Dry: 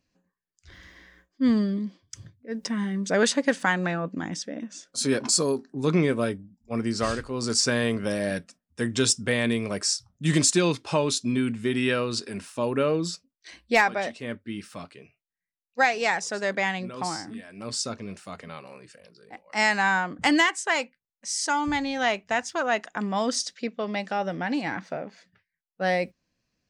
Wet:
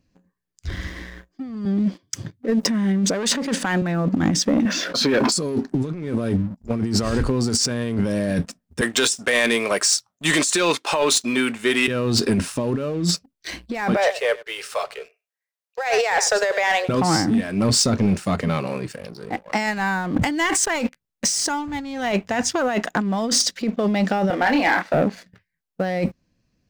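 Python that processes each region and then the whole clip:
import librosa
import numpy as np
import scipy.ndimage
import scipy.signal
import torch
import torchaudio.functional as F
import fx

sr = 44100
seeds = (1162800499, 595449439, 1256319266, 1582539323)

y = fx.chain(x, sr, fx.highpass(hz=210.0, slope=12),
    fx.transformer_sat(knee_hz=1200.0), at=(1.65, 3.82))
y = fx.chain(y, sr, fx.highpass(hz=1100.0, slope=6),
    fx.air_absorb(metres=280.0),
    fx.env_flatten(amount_pct=70), at=(4.65, 5.32))
y = fx.chain(y, sr, fx.highpass(hz=740.0, slope=12),
    fx.peak_eq(hz=5100.0, db=-5.0, octaves=0.27), at=(8.81, 11.88))
y = fx.chain(y, sr, fx.steep_highpass(hz=430.0, slope=72),
    fx.echo_single(ms=96, db=-19.0), at=(13.96, 16.89))
y = fx.chain(y, sr, fx.over_compress(threshold_db=-28.0, ratio=-1.0),
    fx.leveller(passes=2), at=(19.66, 22.12))
y = fx.chain(y, sr, fx.bandpass_edges(low_hz=620.0, high_hz=3300.0),
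    fx.doubler(ms=28.0, db=-5.0), at=(24.3, 24.94))
y = fx.low_shelf(y, sr, hz=420.0, db=10.5)
y = fx.over_compress(y, sr, threshold_db=-28.0, ratio=-1.0)
y = fx.leveller(y, sr, passes=2)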